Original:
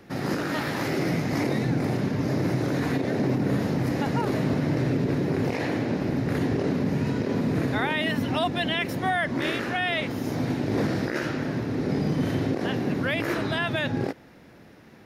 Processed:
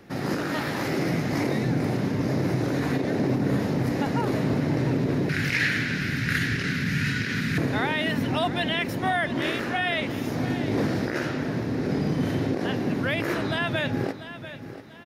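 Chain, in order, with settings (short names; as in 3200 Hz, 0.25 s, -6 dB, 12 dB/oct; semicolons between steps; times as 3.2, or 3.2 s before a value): 5.29–7.58 EQ curve 170 Hz 0 dB, 620 Hz -17 dB, 1000 Hz -12 dB, 1500 Hz +13 dB, 7400 Hz +8 dB; feedback echo 0.691 s, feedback 35%, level -13 dB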